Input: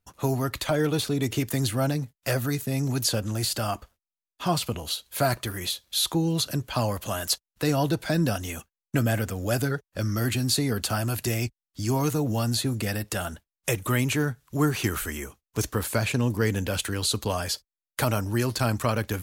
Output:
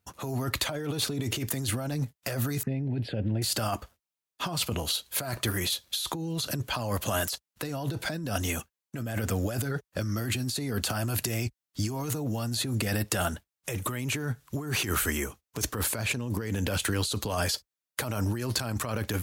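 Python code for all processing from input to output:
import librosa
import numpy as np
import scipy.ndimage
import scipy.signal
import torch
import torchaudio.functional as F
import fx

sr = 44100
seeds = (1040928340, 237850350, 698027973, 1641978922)

y = fx.chain(x, sr, fx.lowpass(hz=1900.0, slope=12),
    fx.env_phaser(low_hz=580.0, high_hz=1200.0, full_db=-26.0), at=(2.63, 3.42))
y = scipy.signal.sosfilt(scipy.signal.butter(2, 53.0, 'highpass', fs=sr, output='sos'), y)
y = fx.over_compress(y, sr, threshold_db=-30.0, ratio=-1.0)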